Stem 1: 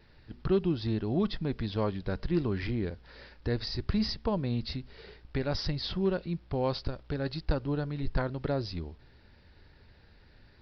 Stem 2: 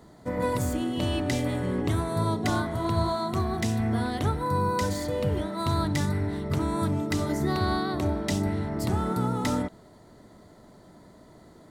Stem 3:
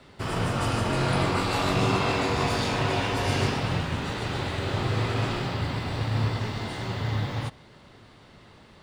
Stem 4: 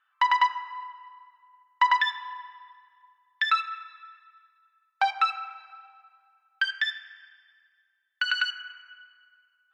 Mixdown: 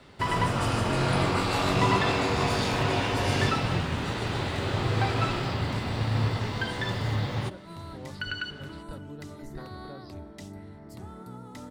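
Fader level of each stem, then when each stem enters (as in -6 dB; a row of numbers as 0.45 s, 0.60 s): -15.0 dB, -16.0 dB, -0.5 dB, -8.0 dB; 1.40 s, 2.10 s, 0.00 s, 0.00 s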